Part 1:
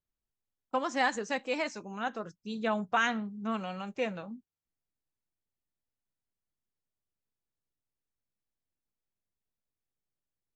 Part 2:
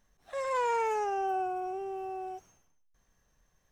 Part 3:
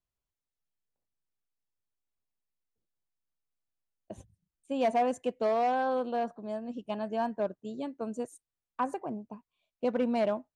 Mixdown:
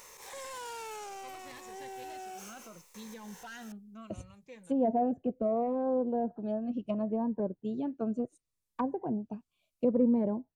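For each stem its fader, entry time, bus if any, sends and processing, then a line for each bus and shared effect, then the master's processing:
-7.5 dB, 0.50 s, bus A, no send, auto duck -9 dB, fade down 0.35 s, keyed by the third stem
+3.0 dB, 0.00 s, bus A, no send, per-bin compression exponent 0.6; tilt +2 dB/oct
+1.0 dB, 0.00 s, no bus, no send, treble ducked by the level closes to 640 Hz, closed at -29.5 dBFS; low shelf 370 Hz +6 dB
bus A: 0.0 dB, soft clip -30 dBFS, distortion -9 dB; limiter -38 dBFS, peak gain reduction 8 dB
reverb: off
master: high shelf 6800 Hz +10.5 dB; cascading phaser falling 0.71 Hz

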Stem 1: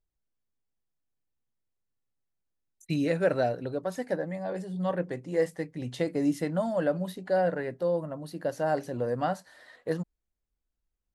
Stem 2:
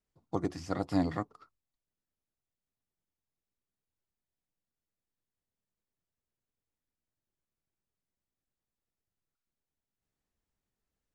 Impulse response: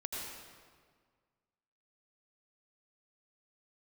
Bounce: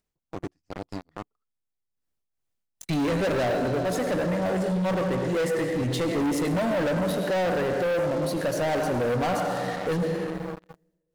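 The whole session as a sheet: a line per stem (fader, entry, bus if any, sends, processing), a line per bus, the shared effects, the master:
-1.5 dB, 0.00 s, send -3.5 dB, dry
-14.0 dB, 0.00 s, no send, upward compressor, threshold -38 dBFS; beating tremolo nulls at 2.4 Hz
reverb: on, RT60 1.7 s, pre-delay 75 ms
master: sample leveller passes 5; limiter -22 dBFS, peak gain reduction 11 dB

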